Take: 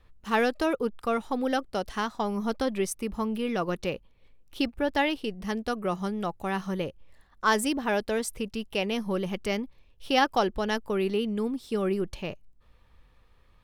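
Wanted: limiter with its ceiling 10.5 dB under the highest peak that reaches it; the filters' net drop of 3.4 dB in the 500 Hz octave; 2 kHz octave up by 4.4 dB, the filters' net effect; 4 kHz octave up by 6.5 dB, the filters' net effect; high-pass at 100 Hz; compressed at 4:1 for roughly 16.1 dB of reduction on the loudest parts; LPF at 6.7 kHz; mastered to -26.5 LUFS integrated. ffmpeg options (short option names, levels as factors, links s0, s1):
-af "highpass=100,lowpass=6700,equalizer=f=500:t=o:g=-4.5,equalizer=f=2000:t=o:g=4,equalizer=f=4000:t=o:g=8,acompressor=threshold=0.0158:ratio=4,volume=5.62,alimiter=limit=0.158:level=0:latency=1"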